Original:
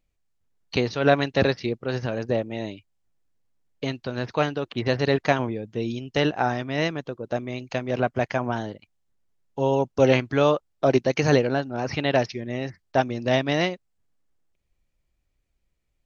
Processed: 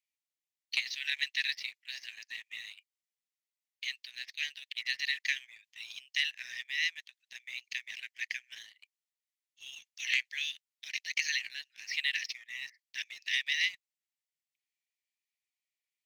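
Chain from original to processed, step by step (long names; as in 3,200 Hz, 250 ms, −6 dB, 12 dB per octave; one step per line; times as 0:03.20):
Butterworth high-pass 1,800 Hz 96 dB per octave
leveller curve on the samples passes 1
level −4 dB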